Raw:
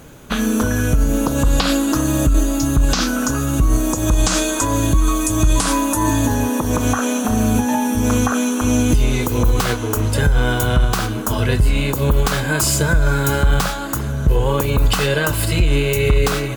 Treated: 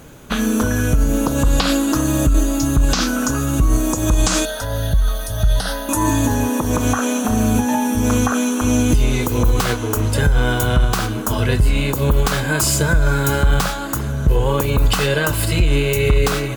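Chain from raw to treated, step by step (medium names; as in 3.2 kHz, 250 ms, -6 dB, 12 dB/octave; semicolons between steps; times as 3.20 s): 4.45–5.89 s: static phaser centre 1.6 kHz, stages 8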